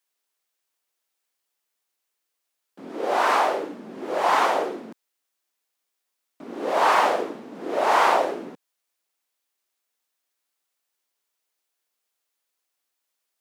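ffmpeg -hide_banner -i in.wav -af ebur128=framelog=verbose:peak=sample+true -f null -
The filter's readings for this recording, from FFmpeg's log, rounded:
Integrated loudness:
  I:         -22.2 LUFS
  Threshold: -33.7 LUFS
Loudness range:
  LRA:         5.4 LU
  Threshold: -46.0 LUFS
  LRA low:   -29.2 LUFS
  LRA high:  -23.7 LUFS
Sample peak:
  Peak:       -6.1 dBFS
True peak:
  Peak:       -6.1 dBFS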